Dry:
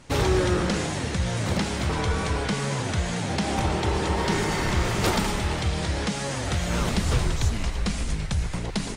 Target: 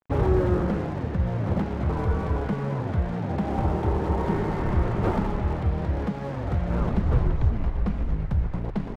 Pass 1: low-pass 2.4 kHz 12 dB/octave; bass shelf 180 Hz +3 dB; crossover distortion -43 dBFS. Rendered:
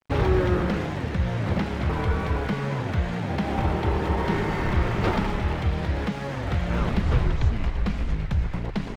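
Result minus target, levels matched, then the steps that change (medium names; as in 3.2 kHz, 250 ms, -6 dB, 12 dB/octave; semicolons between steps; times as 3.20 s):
2 kHz band +7.0 dB
change: low-pass 1.1 kHz 12 dB/octave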